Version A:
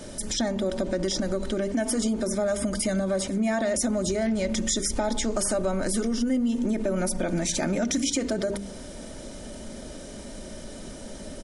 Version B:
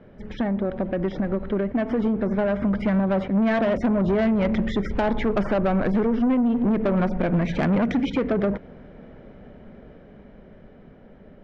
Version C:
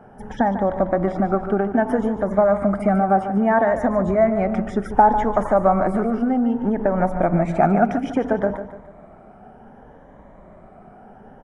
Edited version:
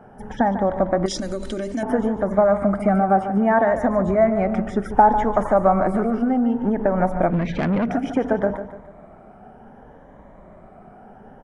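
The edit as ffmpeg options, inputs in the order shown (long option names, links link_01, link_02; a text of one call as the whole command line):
ffmpeg -i take0.wav -i take1.wav -i take2.wav -filter_complex "[2:a]asplit=3[link_01][link_02][link_03];[link_01]atrim=end=1.062[link_04];[0:a]atrim=start=1.058:end=1.832[link_05];[link_02]atrim=start=1.828:end=7.302[link_06];[1:a]atrim=start=7.298:end=7.902[link_07];[link_03]atrim=start=7.898[link_08];[link_04][link_05]acrossfade=duration=0.004:curve1=hsin:curve2=hsin[link_09];[link_09][link_06]acrossfade=duration=0.004:curve1=hsin:curve2=hsin[link_10];[link_10][link_07]acrossfade=duration=0.004:curve1=hsin:curve2=hsin[link_11];[link_11][link_08]acrossfade=duration=0.004:curve1=hsin:curve2=hsin" out.wav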